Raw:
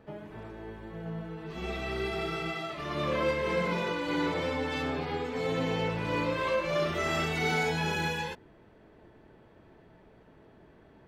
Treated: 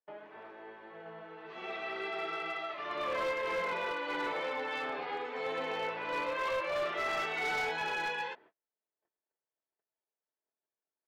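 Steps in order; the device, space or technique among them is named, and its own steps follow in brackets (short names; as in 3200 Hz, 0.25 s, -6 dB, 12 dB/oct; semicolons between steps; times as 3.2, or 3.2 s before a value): walkie-talkie (BPF 580–2900 Hz; hard clip -29 dBFS, distortion -16 dB; gate -57 dBFS, range -38 dB)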